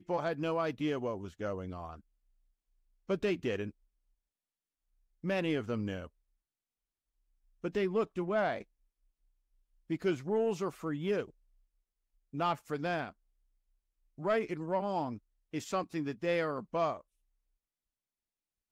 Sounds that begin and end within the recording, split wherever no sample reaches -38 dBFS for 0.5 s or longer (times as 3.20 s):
3.10–3.69 s
5.24–6.05 s
7.64–8.62 s
9.90–11.24 s
12.34–13.10 s
14.20–16.97 s